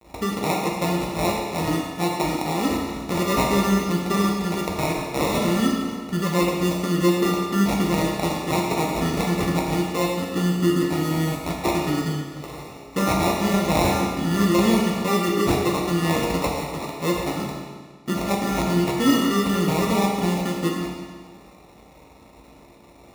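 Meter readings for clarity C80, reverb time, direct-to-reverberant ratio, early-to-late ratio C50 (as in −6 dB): 3.0 dB, 1.6 s, −2.0 dB, 1.0 dB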